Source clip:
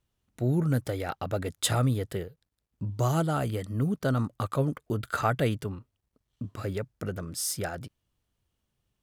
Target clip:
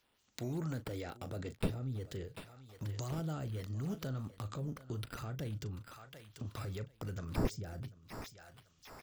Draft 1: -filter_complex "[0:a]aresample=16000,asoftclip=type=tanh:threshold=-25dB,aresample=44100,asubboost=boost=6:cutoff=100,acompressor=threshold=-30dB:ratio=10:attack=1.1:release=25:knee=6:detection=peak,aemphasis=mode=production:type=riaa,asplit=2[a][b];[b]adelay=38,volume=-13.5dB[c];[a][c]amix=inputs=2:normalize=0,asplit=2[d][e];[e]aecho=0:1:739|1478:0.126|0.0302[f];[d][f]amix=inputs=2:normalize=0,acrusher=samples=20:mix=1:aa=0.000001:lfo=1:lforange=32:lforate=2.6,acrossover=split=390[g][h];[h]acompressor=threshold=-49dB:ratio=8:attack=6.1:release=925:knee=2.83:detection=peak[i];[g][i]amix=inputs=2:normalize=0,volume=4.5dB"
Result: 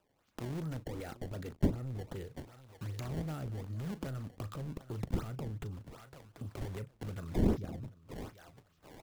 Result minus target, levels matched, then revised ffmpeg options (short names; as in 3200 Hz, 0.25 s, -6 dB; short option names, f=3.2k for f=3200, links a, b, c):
soft clip: distortion +15 dB; decimation with a swept rate: distortion +5 dB
-filter_complex "[0:a]aresample=16000,asoftclip=type=tanh:threshold=-13.5dB,aresample=44100,asubboost=boost=6:cutoff=100,acompressor=threshold=-30dB:ratio=10:attack=1.1:release=25:knee=6:detection=peak,aemphasis=mode=production:type=riaa,asplit=2[a][b];[b]adelay=38,volume=-13.5dB[c];[a][c]amix=inputs=2:normalize=0,asplit=2[d][e];[e]aecho=0:1:739|1478:0.126|0.0302[f];[d][f]amix=inputs=2:normalize=0,acrusher=samples=4:mix=1:aa=0.000001:lfo=1:lforange=6.4:lforate=2.6,acrossover=split=390[g][h];[h]acompressor=threshold=-49dB:ratio=8:attack=6.1:release=925:knee=2.83:detection=peak[i];[g][i]amix=inputs=2:normalize=0,volume=4.5dB"